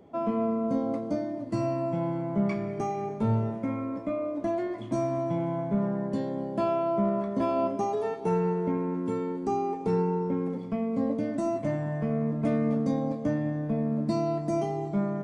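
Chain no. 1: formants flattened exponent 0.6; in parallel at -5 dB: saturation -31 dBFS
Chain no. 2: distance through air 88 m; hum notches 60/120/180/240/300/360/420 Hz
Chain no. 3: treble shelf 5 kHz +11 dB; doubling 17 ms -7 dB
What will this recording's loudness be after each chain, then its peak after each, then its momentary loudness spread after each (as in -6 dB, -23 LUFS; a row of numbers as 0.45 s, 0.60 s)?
-27.0 LUFS, -30.0 LUFS, -29.0 LUFS; -13.5 dBFS, -15.5 dBFS, -14.0 dBFS; 4 LU, 5 LU, 5 LU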